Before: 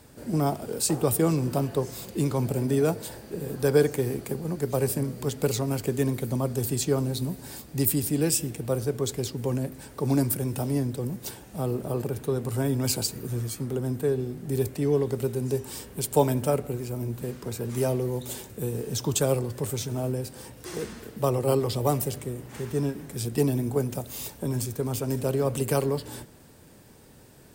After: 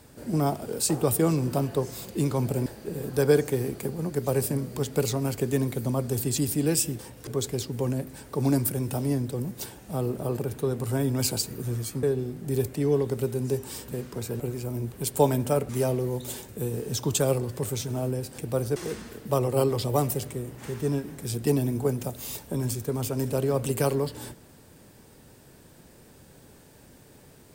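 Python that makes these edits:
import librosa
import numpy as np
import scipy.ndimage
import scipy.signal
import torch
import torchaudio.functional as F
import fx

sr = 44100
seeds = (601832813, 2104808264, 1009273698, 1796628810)

y = fx.edit(x, sr, fx.cut(start_s=2.66, length_s=0.46),
    fx.cut(start_s=6.84, length_s=1.09),
    fx.swap(start_s=8.54, length_s=0.38, other_s=20.39, other_length_s=0.28),
    fx.cut(start_s=13.68, length_s=0.36),
    fx.swap(start_s=15.89, length_s=0.77, other_s=17.18, other_length_s=0.52), tone=tone)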